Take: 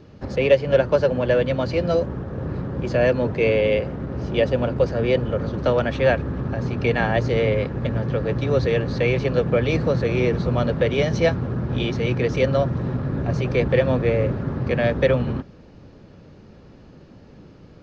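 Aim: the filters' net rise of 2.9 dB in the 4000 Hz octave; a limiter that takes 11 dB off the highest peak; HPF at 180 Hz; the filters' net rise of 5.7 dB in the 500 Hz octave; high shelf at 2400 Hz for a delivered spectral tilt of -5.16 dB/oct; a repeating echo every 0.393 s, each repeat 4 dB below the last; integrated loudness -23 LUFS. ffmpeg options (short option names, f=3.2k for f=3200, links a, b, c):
-af "highpass=180,equalizer=f=500:t=o:g=6.5,highshelf=f=2.4k:g=-3.5,equalizer=f=4k:t=o:g=7,alimiter=limit=-10.5dB:level=0:latency=1,aecho=1:1:393|786|1179|1572|1965|2358|2751|3144|3537:0.631|0.398|0.25|0.158|0.0994|0.0626|0.0394|0.0249|0.0157,volume=-4dB"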